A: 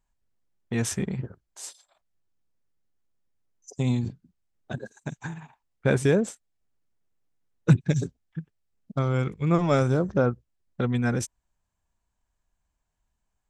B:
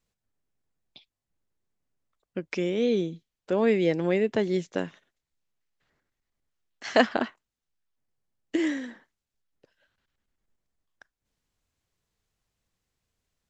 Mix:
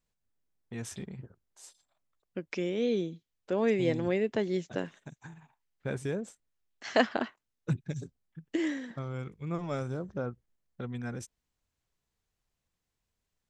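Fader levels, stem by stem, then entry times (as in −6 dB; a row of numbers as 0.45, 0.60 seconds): −12.5, −4.5 decibels; 0.00, 0.00 seconds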